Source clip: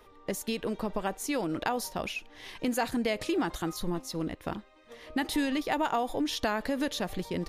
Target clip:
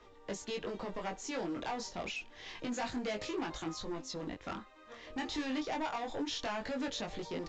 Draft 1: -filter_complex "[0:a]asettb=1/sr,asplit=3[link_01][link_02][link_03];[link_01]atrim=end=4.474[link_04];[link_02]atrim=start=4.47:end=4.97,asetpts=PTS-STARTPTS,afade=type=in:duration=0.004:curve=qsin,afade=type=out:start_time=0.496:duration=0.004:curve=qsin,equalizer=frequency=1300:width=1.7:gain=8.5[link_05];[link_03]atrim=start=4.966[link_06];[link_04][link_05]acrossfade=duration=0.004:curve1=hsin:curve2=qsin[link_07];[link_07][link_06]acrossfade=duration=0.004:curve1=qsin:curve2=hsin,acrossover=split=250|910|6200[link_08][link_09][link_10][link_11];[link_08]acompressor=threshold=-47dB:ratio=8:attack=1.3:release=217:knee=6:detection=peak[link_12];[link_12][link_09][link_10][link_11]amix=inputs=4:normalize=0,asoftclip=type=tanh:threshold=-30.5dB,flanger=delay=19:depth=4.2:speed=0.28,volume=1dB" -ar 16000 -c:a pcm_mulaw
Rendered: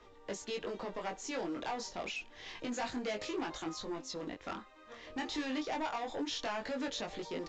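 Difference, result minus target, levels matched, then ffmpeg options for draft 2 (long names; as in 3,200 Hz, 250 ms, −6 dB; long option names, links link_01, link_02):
downward compressor: peak gain reduction +8 dB
-filter_complex "[0:a]asettb=1/sr,asplit=3[link_01][link_02][link_03];[link_01]atrim=end=4.474[link_04];[link_02]atrim=start=4.47:end=4.97,asetpts=PTS-STARTPTS,afade=type=in:duration=0.004:curve=qsin,afade=type=out:start_time=0.496:duration=0.004:curve=qsin,equalizer=frequency=1300:width=1.7:gain=8.5[link_05];[link_03]atrim=start=4.966[link_06];[link_04][link_05]acrossfade=duration=0.004:curve1=hsin:curve2=qsin[link_07];[link_07][link_06]acrossfade=duration=0.004:curve1=qsin:curve2=hsin,acrossover=split=250|910|6200[link_08][link_09][link_10][link_11];[link_08]acompressor=threshold=-38dB:ratio=8:attack=1.3:release=217:knee=6:detection=peak[link_12];[link_12][link_09][link_10][link_11]amix=inputs=4:normalize=0,asoftclip=type=tanh:threshold=-30.5dB,flanger=delay=19:depth=4.2:speed=0.28,volume=1dB" -ar 16000 -c:a pcm_mulaw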